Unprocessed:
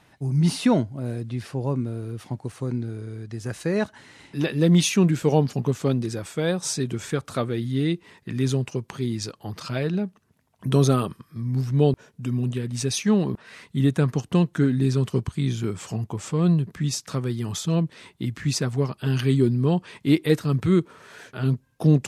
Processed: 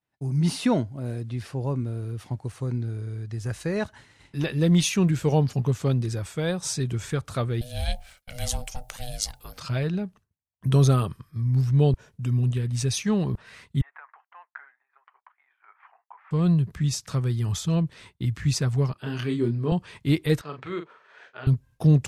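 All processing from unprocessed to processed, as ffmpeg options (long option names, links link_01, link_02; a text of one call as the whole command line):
ffmpeg -i in.wav -filter_complex "[0:a]asettb=1/sr,asplit=3[link_01][link_02][link_03];[link_01]atrim=end=7.614[link_04];[link_02]atrim=start=7.61:end=9.58,asetpts=PTS-STARTPTS,afade=type=in:duration=0.004:curve=qsin,afade=type=out:start_time=1.966:duration=0.004:curve=qsin,aemphasis=mode=production:type=riaa,bandreject=frequency=50:width_type=h:width=6,bandreject=frequency=100:width_type=h:width=6,bandreject=frequency=150:width_type=h:width=6,bandreject=frequency=200:width_type=h:width=6,bandreject=frequency=250:width_type=h:width=6,bandreject=frequency=300:width_type=h:width=6,bandreject=frequency=350:width_type=h:width=6,bandreject=frequency=400:width_type=h:width=6,bandreject=frequency=450:width_type=h:width=6,bandreject=frequency=500:width_type=h:width=6,aeval=exprs='val(0)*sin(2*PI*370*n/s)':channel_layout=same[link_05];[link_03]atrim=start=9.576[link_06];[link_04][link_05]acrossfade=duration=0.004:curve1=hsin:curve2=qsin[link_07];[link_07][link_06]acrossfade=duration=0.004:curve1=qsin:curve2=hsin,asettb=1/sr,asplit=3[link_08][link_09][link_10];[link_08]atrim=end=13.814[link_11];[link_09]atrim=start=13.81:end=16.31,asetpts=PTS-STARTPTS,afade=type=in:duration=0.004:curve=qsin,afade=type=out:start_time=2.496:duration=0.004:curve=qsin,acompressor=threshold=-22dB:ratio=10:attack=3.2:release=140:knee=1:detection=peak,asuperpass=centerf=1300:order=8:qfactor=0.96[link_12];[link_10]atrim=start=16.306[link_13];[link_11][link_12]acrossfade=duration=0.004:curve1=hsin:curve2=qsin[link_14];[link_14][link_13]acrossfade=duration=0.004:curve1=qsin:curve2=hsin,asettb=1/sr,asplit=3[link_15][link_16][link_17];[link_15]atrim=end=18.934[link_18];[link_16]atrim=start=18.93:end=19.72,asetpts=PTS-STARTPTS,afade=type=in:duration=0.004:curve=qsin,afade=type=out:start_time=0.786:duration=0.004:curve=qsin,highpass=210,highshelf=frequency=4600:gain=-11.5,asplit=2[link_19][link_20];[link_20]adelay=26,volume=-5dB[link_21];[link_19][link_21]amix=inputs=2:normalize=0,atrim=end_sample=34839[link_22];[link_17]atrim=start=19.716[link_23];[link_18][link_22]acrossfade=duration=0.004:curve1=hsin:curve2=qsin[link_24];[link_24][link_23]acrossfade=duration=0.004:curve1=qsin:curve2=hsin,asettb=1/sr,asplit=3[link_25][link_26][link_27];[link_25]atrim=end=20.414[link_28];[link_26]atrim=start=20.41:end=21.47,asetpts=PTS-STARTPTS,afade=type=in:duration=0.004:curve=qsin,afade=type=out:start_time=1.056:duration=0.004:curve=qsin,highpass=500,lowpass=2900,asplit=2[link_29][link_30];[link_30]adelay=40,volume=-7.5dB[link_31];[link_29][link_31]amix=inputs=2:normalize=0,atrim=end_sample=46746[link_32];[link_27]atrim=start=21.466[link_33];[link_28][link_32]acrossfade=duration=0.004:curve1=hsin:curve2=qsin[link_34];[link_34][link_33]acrossfade=duration=0.004:curve1=qsin:curve2=hsin,asubboost=boost=5.5:cutoff=98,agate=range=-33dB:threshold=-42dB:ratio=3:detection=peak,volume=-2dB" out.wav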